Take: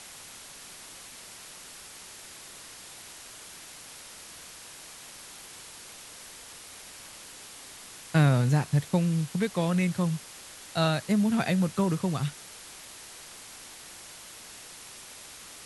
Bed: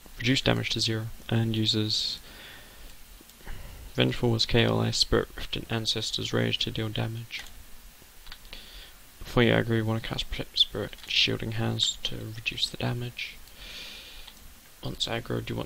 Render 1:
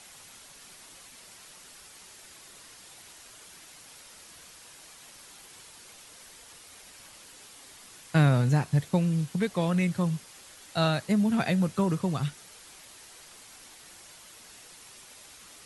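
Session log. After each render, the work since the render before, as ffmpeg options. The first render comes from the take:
-af "afftdn=nr=6:nf=-47"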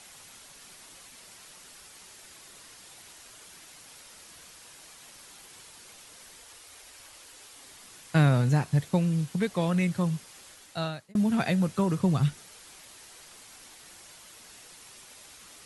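-filter_complex "[0:a]asettb=1/sr,asplit=3[s0][s1][s2];[s0]atrim=end=6.424[s3];[s1]atrim=start=6.42:end=7.56,asetpts=PTS-STARTPTS,afade=t=in:d=0.004:c=qsin,afade=t=out:st=1.136:d=0.004:c=qsin,equalizer=f=180:t=o:w=0.72:g=-12[s4];[s2]atrim=start=7.556[s5];[s3][s4]acrossfade=d=0.004:c1=hsin:c2=qsin[s6];[s6][s5]acrossfade=d=0.004:c1=qsin:c2=hsin,asettb=1/sr,asplit=3[s7][s8][s9];[s7]atrim=end=11.984[s10];[s8]atrim=start=11.98:end=12.42,asetpts=PTS-STARTPTS,afade=t=in:d=0.004:c=qsin,afade=t=out:st=0.436:d=0.004:c=qsin,lowshelf=f=250:g=7.5[s11];[s9]atrim=start=12.416[s12];[s10][s11]acrossfade=d=0.004:c1=hsin:c2=qsin[s13];[s13][s12]acrossfade=d=0.004:c1=qsin:c2=hsin,asplit=2[s14][s15];[s14]atrim=end=11.15,asetpts=PTS-STARTPTS,afade=t=out:st=10.48:d=0.67[s16];[s15]atrim=start=11.15,asetpts=PTS-STARTPTS,afade=t=in:d=0.004:c=hsin[s17];[s16][s17]concat=n=2:v=0:a=1"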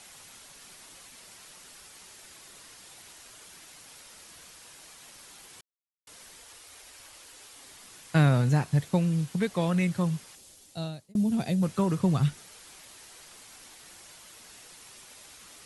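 -filter_complex "[0:a]asettb=1/sr,asplit=3[s0][s1][s2];[s0]atrim=end=10.354[s3];[s1]atrim=start=10.35:end=11.63,asetpts=PTS-STARTPTS,afade=t=in:d=0.004:c=qsin,afade=t=out:st=1.276:d=0.004:c=qsin,equalizer=f=1500:w=0.68:g=-13.5[s4];[s2]atrim=start=11.626[s5];[s3][s4]acrossfade=d=0.004:c1=hsin:c2=qsin[s6];[s6][s5]acrossfade=d=0.004:c1=qsin:c2=hsin,asplit=3[s7][s8][s9];[s7]atrim=end=5.61,asetpts=PTS-STARTPTS,afade=t=out:st=5.606:d=0.004:c=hsin[s10];[s8]atrim=start=5.61:end=6.07,asetpts=PTS-STARTPTS,volume=0[s11];[s9]atrim=start=6.07,asetpts=PTS-STARTPTS,afade=t=in:d=0.004:c=hsin[s12];[s10][s11][s12]concat=n=3:v=0:a=1"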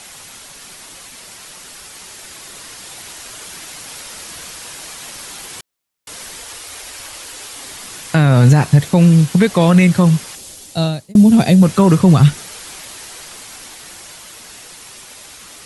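-af "dynaudnorm=f=450:g=13:m=1.78,alimiter=level_in=4.47:limit=0.891:release=50:level=0:latency=1"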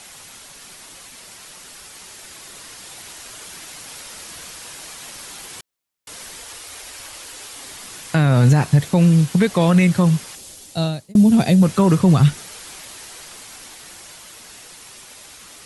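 -af "volume=0.631"

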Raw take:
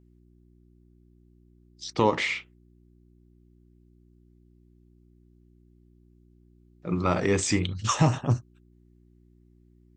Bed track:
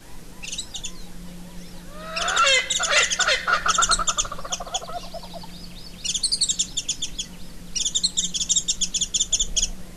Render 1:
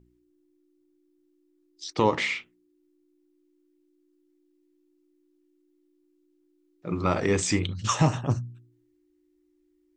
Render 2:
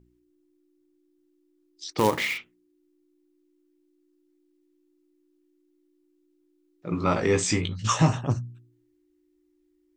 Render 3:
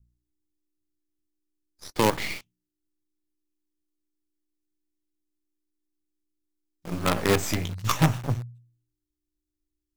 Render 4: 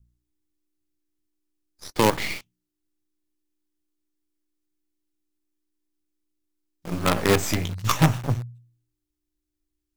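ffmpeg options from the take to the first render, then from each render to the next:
-af "bandreject=f=60:t=h:w=4,bandreject=f=120:t=h:w=4,bandreject=f=180:t=h:w=4,bandreject=f=240:t=h:w=4"
-filter_complex "[0:a]asettb=1/sr,asplit=3[s0][s1][s2];[s0]atrim=end=1.984[s3];[s1]atrim=start=1.98:end=2.38,asetpts=PTS-STARTPTS,afade=t=in:d=0.004:c=qsin,afade=t=out:st=0.396:d=0.004:c=qsin,acrusher=bits=3:mode=log:mix=0:aa=0.000001[s4];[s2]atrim=start=2.376[s5];[s3][s4]acrossfade=d=0.004:c1=hsin:c2=qsin[s6];[s6][s5]acrossfade=d=0.004:c1=qsin:c2=hsin,asettb=1/sr,asplit=3[s7][s8][s9];[s7]atrim=end=6.904[s10];[s8]atrim=start=6.9:end=8.13,asetpts=PTS-STARTPTS,afade=t=in:d=0.004:c=qsin,afade=t=out:st=1.226:d=0.004:c=qsin,asplit=2[s11][s12];[s12]adelay=18,volume=0.562[s13];[s11][s13]amix=inputs=2:normalize=0,atrim=end_sample=54243[s14];[s9]atrim=start=8.126[s15];[s10][s14]acrossfade=d=0.004:c1=hsin:c2=qsin[s16];[s16][s15]acrossfade=d=0.004:c1=qsin:c2=hsin"
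-filter_complex "[0:a]acrossover=split=170|3500[s0][s1][s2];[s1]acrusher=bits=4:dc=4:mix=0:aa=0.000001[s3];[s2]aeval=exprs='max(val(0),0)':c=same[s4];[s0][s3][s4]amix=inputs=3:normalize=0"
-af "volume=1.33"

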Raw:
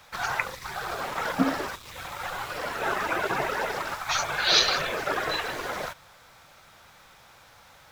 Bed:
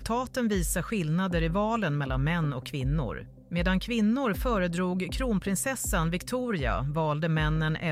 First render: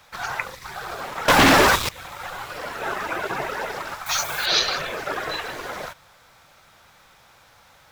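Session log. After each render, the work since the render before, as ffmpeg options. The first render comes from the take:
-filter_complex "[0:a]asettb=1/sr,asplit=3[s0][s1][s2];[s0]atrim=end=1.284[s3];[s1]atrim=start=1.28:end=1.89,asetpts=PTS-STARTPTS,afade=t=in:d=0.004:c=qsin,afade=t=out:st=0.606:d=0.004:c=qsin,aeval=exprs='0.316*sin(PI/2*7.08*val(0)/0.316)':c=same[s4];[s2]atrim=start=1.886[s5];[s3][s4]acrossfade=d=0.004:c1=hsin:c2=qsin[s6];[s6][s5]acrossfade=d=0.004:c1=qsin:c2=hsin,asettb=1/sr,asplit=3[s7][s8][s9];[s7]atrim=end=4.064[s10];[s8]atrim=start=4.06:end=4.46,asetpts=PTS-STARTPTS,afade=t=in:d=0.004:c=qsin,afade=t=out:st=0.396:d=0.004:c=qsin,aemphasis=mode=production:type=50fm[s11];[s9]atrim=start=4.456[s12];[s10][s11]acrossfade=d=0.004:c1=hsin:c2=qsin[s13];[s13][s12]acrossfade=d=0.004:c1=qsin:c2=hsin"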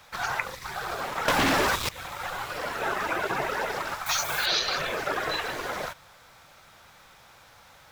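-af "acompressor=threshold=0.0708:ratio=4"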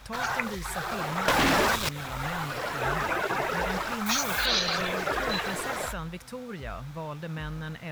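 -filter_complex "[1:a]volume=0.355[s0];[0:a][s0]amix=inputs=2:normalize=0"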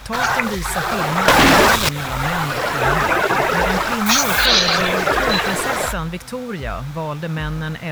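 -af "volume=3.76,alimiter=limit=0.891:level=0:latency=1"

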